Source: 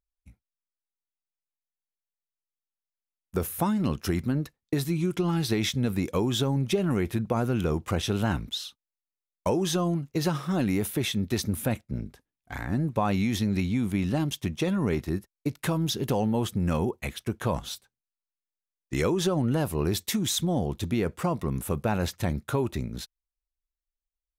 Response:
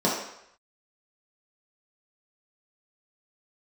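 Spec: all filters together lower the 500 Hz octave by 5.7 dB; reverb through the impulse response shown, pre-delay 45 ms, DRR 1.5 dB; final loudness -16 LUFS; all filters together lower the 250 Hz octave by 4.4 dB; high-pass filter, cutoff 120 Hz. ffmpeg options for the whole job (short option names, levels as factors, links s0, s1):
-filter_complex "[0:a]highpass=120,equalizer=f=250:t=o:g=-4,equalizer=f=500:t=o:g=-6,asplit=2[s0][s1];[1:a]atrim=start_sample=2205,adelay=45[s2];[s1][s2]afir=irnorm=-1:irlink=0,volume=0.15[s3];[s0][s3]amix=inputs=2:normalize=0,volume=3.35"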